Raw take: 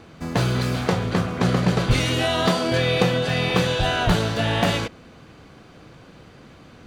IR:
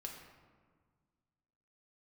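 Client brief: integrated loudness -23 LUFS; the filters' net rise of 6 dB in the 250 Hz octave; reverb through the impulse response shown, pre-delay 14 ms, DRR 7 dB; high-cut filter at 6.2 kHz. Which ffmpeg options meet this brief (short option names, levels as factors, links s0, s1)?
-filter_complex "[0:a]lowpass=6200,equalizer=f=250:t=o:g=8.5,asplit=2[s0][s1];[1:a]atrim=start_sample=2205,adelay=14[s2];[s1][s2]afir=irnorm=-1:irlink=0,volume=0.631[s3];[s0][s3]amix=inputs=2:normalize=0,volume=0.631"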